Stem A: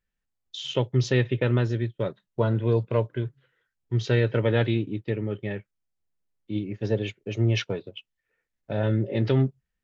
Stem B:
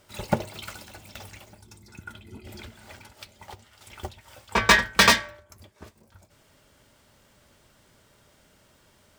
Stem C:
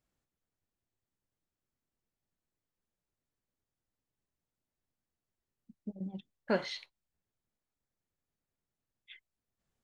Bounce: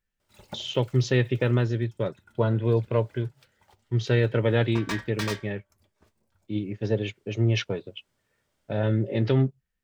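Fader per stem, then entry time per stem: 0.0 dB, −16.5 dB, muted; 0.00 s, 0.20 s, muted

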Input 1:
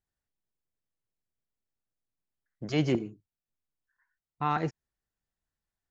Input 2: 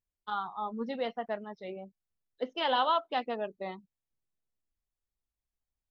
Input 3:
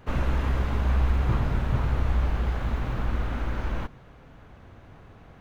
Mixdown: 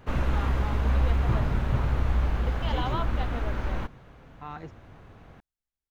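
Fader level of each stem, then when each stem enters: −11.5, −6.0, −0.5 decibels; 0.00, 0.05, 0.00 seconds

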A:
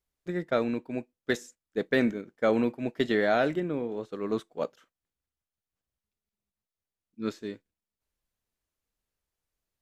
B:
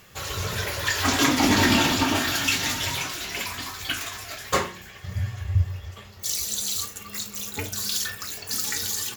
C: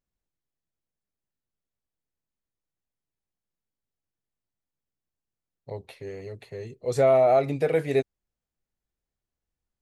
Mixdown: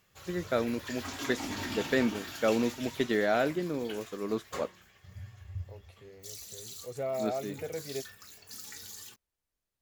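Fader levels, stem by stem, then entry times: −2.5, −17.5, −14.5 decibels; 0.00, 0.00, 0.00 seconds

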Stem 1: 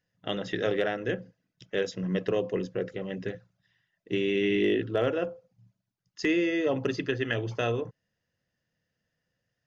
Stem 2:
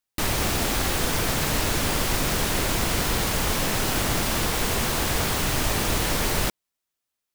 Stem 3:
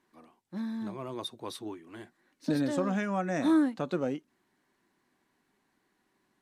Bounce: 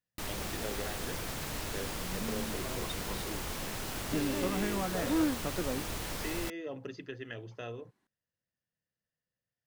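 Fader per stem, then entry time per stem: −13.5, −14.0, −5.0 decibels; 0.00, 0.00, 1.65 seconds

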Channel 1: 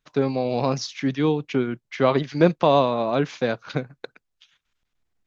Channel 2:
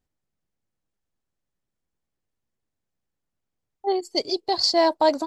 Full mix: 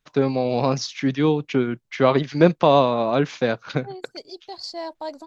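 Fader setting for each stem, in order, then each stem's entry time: +2.0, −13.0 decibels; 0.00, 0.00 seconds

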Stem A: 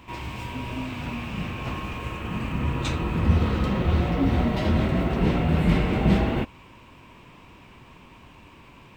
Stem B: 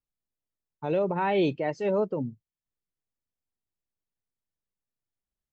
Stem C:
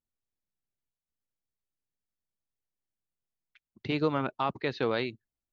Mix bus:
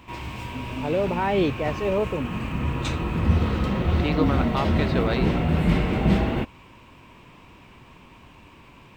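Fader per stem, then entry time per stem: 0.0, +2.0, +2.5 decibels; 0.00, 0.00, 0.15 seconds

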